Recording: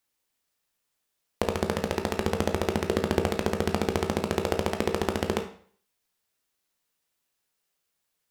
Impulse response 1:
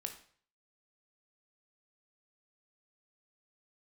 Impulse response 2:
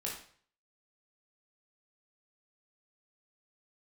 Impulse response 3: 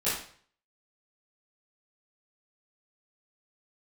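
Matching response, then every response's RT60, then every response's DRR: 1; 0.50, 0.50, 0.50 seconds; 4.5, −4.0, −13.5 decibels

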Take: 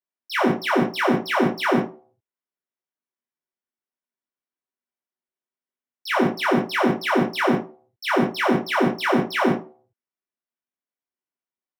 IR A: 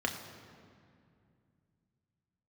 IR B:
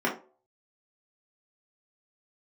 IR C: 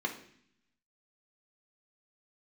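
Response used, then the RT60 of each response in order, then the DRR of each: B; 2.4, 0.40, 0.60 seconds; 2.0, −5.0, 0.5 decibels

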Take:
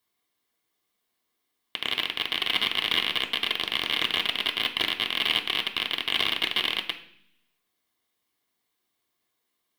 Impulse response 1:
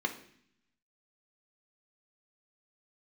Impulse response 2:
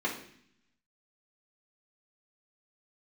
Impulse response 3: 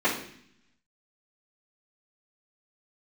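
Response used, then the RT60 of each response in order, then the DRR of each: 1; 0.60, 0.60, 0.60 seconds; 3.0, −5.5, −14.0 decibels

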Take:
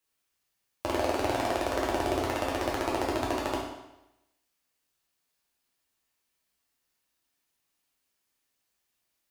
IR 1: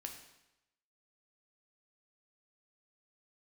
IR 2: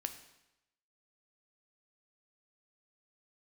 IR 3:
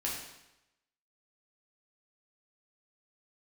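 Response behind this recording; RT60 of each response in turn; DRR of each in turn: 3; 0.90, 0.90, 0.90 seconds; 2.5, 7.0, −5.0 decibels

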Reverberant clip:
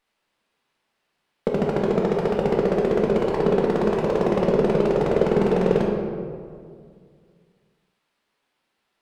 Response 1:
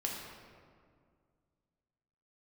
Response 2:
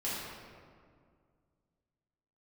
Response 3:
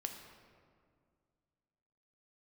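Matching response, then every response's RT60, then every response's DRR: 1; 2.1, 2.0, 2.1 seconds; −2.0, −10.0, 4.0 decibels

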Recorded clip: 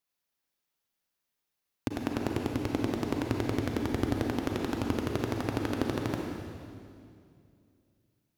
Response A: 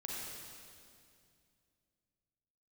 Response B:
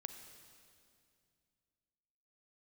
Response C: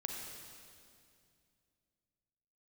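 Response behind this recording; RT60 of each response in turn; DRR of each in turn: C; 2.4, 2.4, 2.4 seconds; −4.5, 7.0, 0.5 decibels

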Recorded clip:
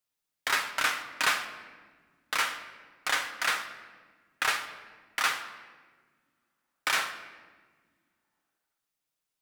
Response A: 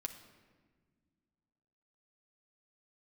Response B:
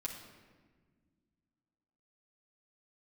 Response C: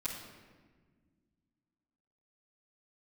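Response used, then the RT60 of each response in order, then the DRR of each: A; non-exponential decay, 1.6 s, 1.6 s; 4.0, −3.0, −12.5 decibels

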